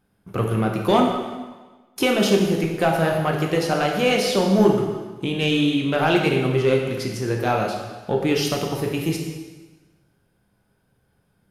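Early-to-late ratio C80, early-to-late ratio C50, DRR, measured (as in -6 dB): 5.5 dB, 3.5 dB, 0.5 dB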